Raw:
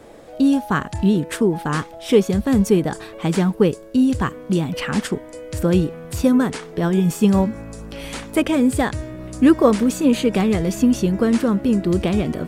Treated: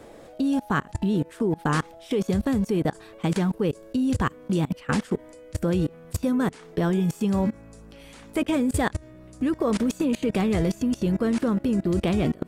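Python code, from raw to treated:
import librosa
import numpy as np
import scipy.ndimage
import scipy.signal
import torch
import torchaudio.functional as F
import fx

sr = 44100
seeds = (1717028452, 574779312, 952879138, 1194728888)

y = fx.level_steps(x, sr, step_db=24)
y = y * librosa.db_to_amplitude(2.0)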